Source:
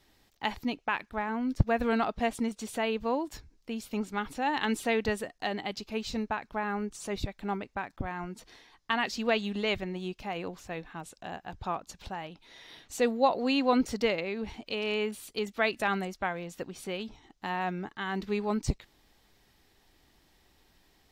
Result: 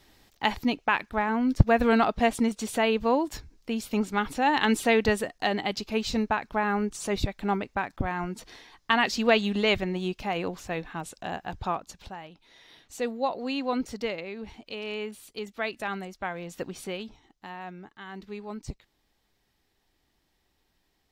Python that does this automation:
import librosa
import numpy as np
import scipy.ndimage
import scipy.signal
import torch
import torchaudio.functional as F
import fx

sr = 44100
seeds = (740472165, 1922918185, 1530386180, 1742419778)

y = fx.gain(x, sr, db=fx.line((11.56, 6.0), (12.22, -3.5), (16.09, -3.5), (16.69, 4.5), (17.55, -8.0)))